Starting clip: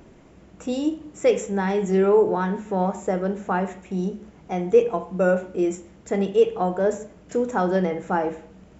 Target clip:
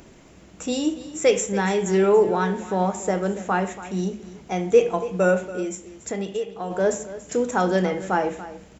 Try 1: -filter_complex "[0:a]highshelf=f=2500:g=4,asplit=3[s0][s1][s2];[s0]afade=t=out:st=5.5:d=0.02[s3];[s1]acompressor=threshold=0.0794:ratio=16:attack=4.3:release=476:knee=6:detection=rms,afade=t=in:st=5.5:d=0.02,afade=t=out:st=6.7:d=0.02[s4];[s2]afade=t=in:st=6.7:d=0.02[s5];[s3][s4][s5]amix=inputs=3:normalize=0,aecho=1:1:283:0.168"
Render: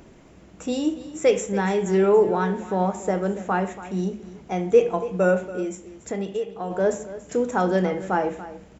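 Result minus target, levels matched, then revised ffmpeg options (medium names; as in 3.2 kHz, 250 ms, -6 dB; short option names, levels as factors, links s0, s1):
4 kHz band -4.0 dB
-filter_complex "[0:a]highshelf=f=2500:g=11,asplit=3[s0][s1][s2];[s0]afade=t=out:st=5.5:d=0.02[s3];[s1]acompressor=threshold=0.0794:ratio=16:attack=4.3:release=476:knee=6:detection=rms,afade=t=in:st=5.5:d=0.02,afade=t=out:st=6.7:d=0.02[s4];[s2]afade=t=in:st=6.7:d=0.02[s5];[s3][s4][s5]amix=inputs=3:normalize=0,aecho=1:1:283:0.168"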